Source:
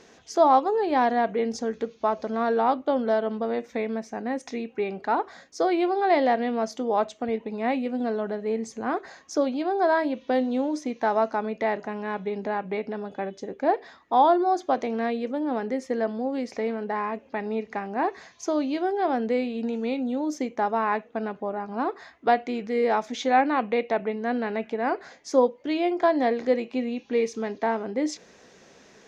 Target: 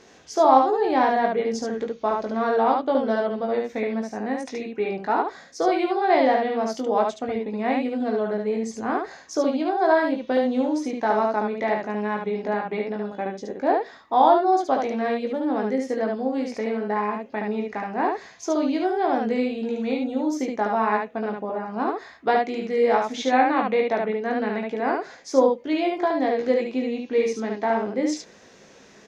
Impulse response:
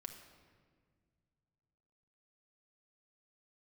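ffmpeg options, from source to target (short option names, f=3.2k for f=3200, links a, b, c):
-filter_complex "[0:a]asettb=1/sr,asplit=3[a][b][c];[a]atrim=end=25.954[d];[b]atrim=start=25.95:end=26.4,asetpts=PTS-STARTPTS,afade=t=in:d=0.004:c=qsin,afade=t=out:st=0.446:d=0.004:c=qsin,acompressor=threshold=-21dB:ratio=4[e];[c]atrim=start=26.396[f];[d][e]acrossfade=d=0.004:c1=hsin:c2=qsin[g];[g][f]acrossfade=d=0.004:c1=qsin:c2=hsin,aecho=1:1:19|72:0.562|0.708"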